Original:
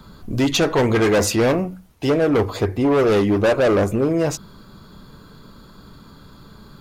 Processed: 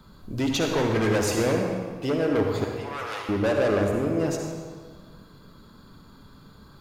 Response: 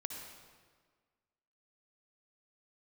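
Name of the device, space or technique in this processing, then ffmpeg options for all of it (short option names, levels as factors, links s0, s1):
stairwell: -filter_complex "[0:a]asettb=1/sr,asplit=3[s0][s1][s2];[s0]atrim=end=2.644[s3];[s1]atrim=start=2.64:end=3.29,asetpts=PTS-STARTPTS,afade=t=in:d=0.004:c=qsin,afade=t=out:st=0.646:d=0.004:c=qsin,highpass=f=770:w=0.5412,highpass=f=770:w=1.3066[s4];[s2]atrim=start=3.286[s5];[s3][s4]acrossfade=d=0.004:c1=hsin:c2=qsin[s6];[s6][s5]acrossfade=d=0.004:c1=qsin:c2=hsin[s7];[1:a]atrim=start_sample=2205[s8];[s7][s8]afir=irnorm=-1:irlink=0,volume=0.562"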